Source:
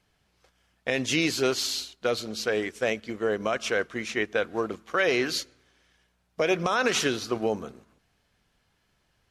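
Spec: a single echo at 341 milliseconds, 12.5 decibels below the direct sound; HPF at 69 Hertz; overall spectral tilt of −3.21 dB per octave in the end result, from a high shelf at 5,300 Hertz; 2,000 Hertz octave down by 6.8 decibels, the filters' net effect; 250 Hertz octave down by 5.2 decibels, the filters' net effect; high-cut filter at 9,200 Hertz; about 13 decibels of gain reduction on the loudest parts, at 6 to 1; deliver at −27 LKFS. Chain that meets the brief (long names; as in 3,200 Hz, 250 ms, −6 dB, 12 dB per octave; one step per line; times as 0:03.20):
high-pass filter 69 Hz
low-pass filter 9,200 Hz
parametric band 250 Hz −7.5 dB
parametric band 2,000 Hz −8 dB
high-shelf EQ 5,300 Hz −7 dB
downward compressor 6 to 1, threshold −38 dBFS
single-tap delay 341 ms −12.5 dB
level +14.5 dB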